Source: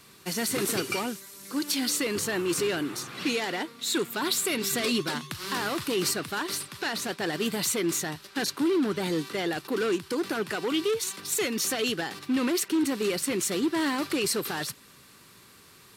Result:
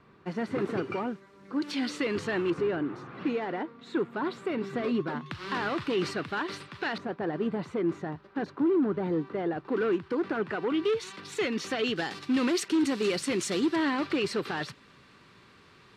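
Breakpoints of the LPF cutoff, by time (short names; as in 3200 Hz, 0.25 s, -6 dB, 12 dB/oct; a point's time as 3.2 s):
1400 Hz
from 1.62 s 2700 Hz
from 2.5 s 1300 Hz
from 5.26 s 2700 Hz
from 6.98 s 1100 Hz
from 9.67 s 1800 Hz
from 10.85 s 3100 Hz
from 11.96 s 6000 Hz
from 13.76 s 3200 Hz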